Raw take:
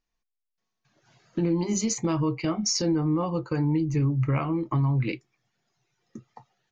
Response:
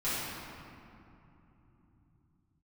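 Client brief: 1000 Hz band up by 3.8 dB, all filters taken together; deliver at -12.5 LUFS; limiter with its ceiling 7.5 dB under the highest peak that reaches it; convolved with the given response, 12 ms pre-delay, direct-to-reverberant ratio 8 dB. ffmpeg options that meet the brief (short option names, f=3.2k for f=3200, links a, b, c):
-filter_complex "[0:a]equalizer=f=1k:t=o:g=4.5,alimiter=limit=-22dB:level=0:latency=1,asplit=2[a][b];[1:a]atrim=start_sample=2205,adelay=12[c];[b][c]afir=irnorm=-1:irlink=0,volume=-17dB[d];[a][d]amix=inputs=2:normalize=0,volume=16.5dB"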